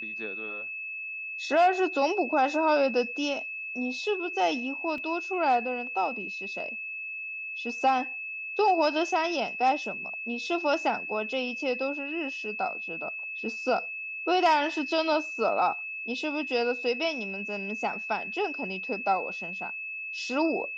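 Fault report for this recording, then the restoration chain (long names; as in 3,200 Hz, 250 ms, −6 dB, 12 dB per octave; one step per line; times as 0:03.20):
whistle 2,600 Hz −34 dBFS
0:04.98: drop-out 2.2 ms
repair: notch filter 2,600 Hz, Q 30
repair the gap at 0:04.98, 2.2 ms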